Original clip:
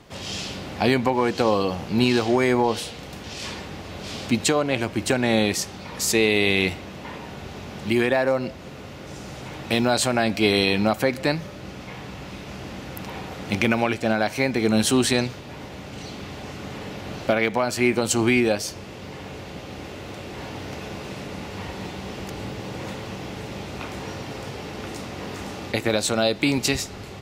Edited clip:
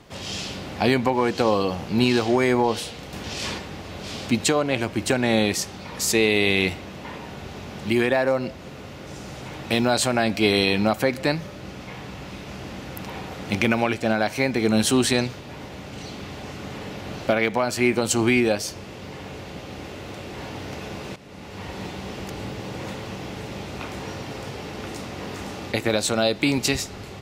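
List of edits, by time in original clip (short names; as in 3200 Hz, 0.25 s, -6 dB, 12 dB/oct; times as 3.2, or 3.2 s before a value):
3.14–3.58 gain +3.5 dB
21.16–21.78 fade in, from -15.5 dB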